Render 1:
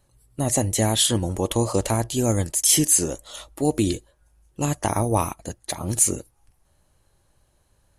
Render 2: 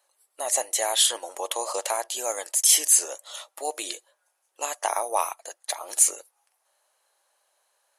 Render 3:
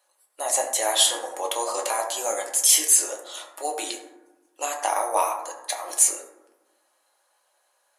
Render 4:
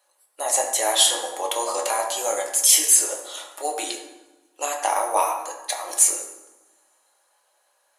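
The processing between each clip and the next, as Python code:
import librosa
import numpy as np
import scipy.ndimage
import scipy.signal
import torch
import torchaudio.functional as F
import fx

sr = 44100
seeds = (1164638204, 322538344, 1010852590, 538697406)

y1 = scipy.signal.sosfilt(scipy.signal.cheby2(4, 60, 170.0, 'highpass', fs=sr, output='sos'), x)
y2 = fx.rev_fdn(y1, sr, rt60_s=1.0, lf_ratio=1.45, hf_ratio=0.4, size_ms=56.0, drr_db=0.5)
y3 = fx.rev_double_slope(y2, sr, seeds[0], early_s=0.79, late_s=2.9, knee_db=-27, drr_db=9.5)
y3 = y3 * librosa.db_to_amplitude(1.5)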